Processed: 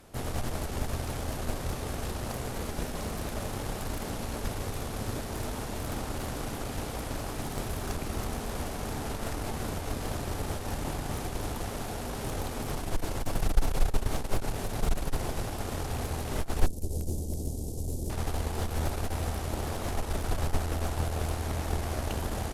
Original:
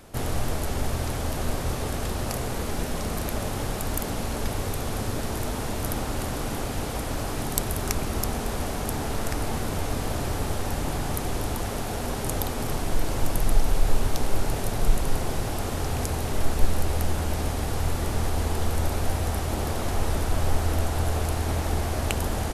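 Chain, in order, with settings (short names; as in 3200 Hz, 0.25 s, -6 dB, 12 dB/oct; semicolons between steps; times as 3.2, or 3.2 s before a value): added harmonics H 4 -11 dB, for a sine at -1 dBFS; 16.66–18.1 Chebyshev band-stop 390–6800 Hz, order 2; slew limiter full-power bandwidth 180 Hz; gain -5.5 dB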